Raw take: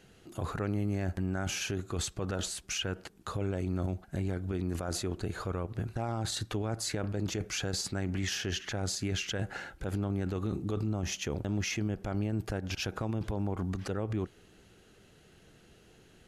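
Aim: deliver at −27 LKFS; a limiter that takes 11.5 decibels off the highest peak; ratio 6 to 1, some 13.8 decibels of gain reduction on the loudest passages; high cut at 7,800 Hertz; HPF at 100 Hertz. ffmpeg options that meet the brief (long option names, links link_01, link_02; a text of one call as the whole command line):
ffmpeg -i in.wav -af "highpass=100,lowpass=7800,acompressor=threshold=-44dB:ratio=6,volume=22dB,alimiter=limit=-15.5dB:level=0:latency=1" out.wav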